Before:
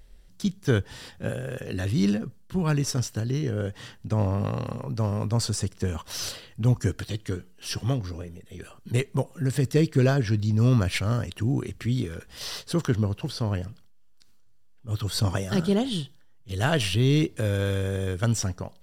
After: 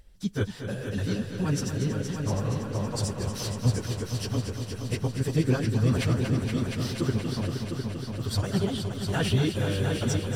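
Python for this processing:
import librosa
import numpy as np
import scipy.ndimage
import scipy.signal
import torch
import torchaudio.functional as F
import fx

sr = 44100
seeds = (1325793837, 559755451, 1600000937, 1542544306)

y = fx.stretch_vocoder_free(x, sr, factor=0.55)
y = fx.echo_heads(y, sr, ms=235, heads='all three', feedback_pct=62, wet_db=-9.5)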